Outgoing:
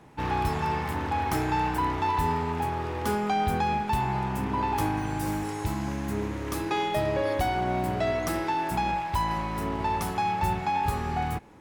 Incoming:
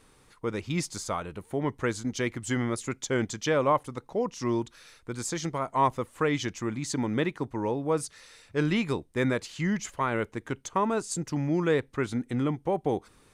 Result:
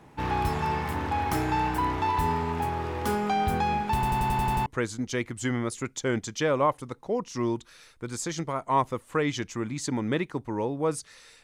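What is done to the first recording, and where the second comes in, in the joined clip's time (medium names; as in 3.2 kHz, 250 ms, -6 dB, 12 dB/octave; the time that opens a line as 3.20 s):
outgoing
3.94 s: stutter in place 0.09 s, 8 plays
4.66 s: go over to incoming from 1.72 s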